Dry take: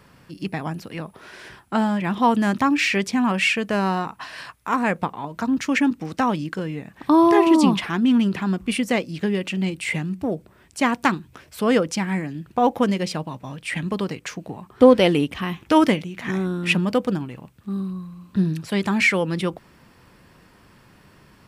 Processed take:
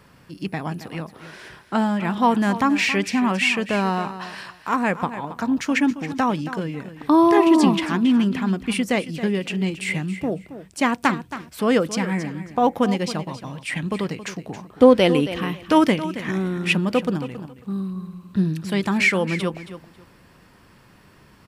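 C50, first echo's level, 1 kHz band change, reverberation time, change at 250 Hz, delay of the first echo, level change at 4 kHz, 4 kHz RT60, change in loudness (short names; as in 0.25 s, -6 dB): none, -13.0 dB, 0.0 dB, none, 0.0 dB, 0.273 s, 0.0 dB, none, 0.0 dB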